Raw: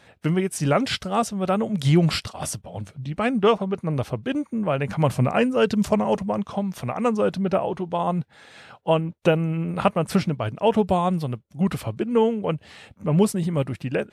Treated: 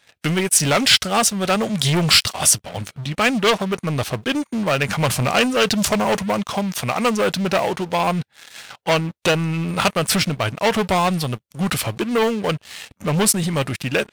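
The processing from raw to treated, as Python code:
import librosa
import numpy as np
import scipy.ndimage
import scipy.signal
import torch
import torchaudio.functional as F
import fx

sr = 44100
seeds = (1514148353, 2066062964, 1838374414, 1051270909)

y = fx.leveller(x, sr, passes=3)
y = fx.tilt_shelf(y, sr, db=-7.0, hz=1300.0)
y = F.gain(torch.from_numpy(y), -1.0).numpy()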